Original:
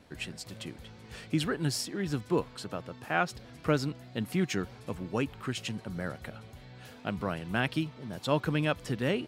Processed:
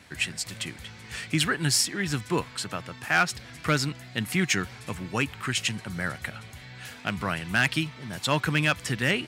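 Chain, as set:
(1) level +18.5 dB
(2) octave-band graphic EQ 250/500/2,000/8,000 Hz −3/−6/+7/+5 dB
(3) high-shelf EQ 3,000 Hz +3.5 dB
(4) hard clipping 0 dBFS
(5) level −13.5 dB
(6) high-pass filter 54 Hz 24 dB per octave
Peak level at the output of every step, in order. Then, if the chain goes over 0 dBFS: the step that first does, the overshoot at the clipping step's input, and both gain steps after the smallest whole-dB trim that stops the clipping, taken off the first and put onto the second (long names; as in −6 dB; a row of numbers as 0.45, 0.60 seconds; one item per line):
+6.5, +7.5, +8.5, 0.0, −13.5, −10.5 dBFS
step 1, 8.5 dB
step 1 +9.5 dB, step 5 −4.5 dB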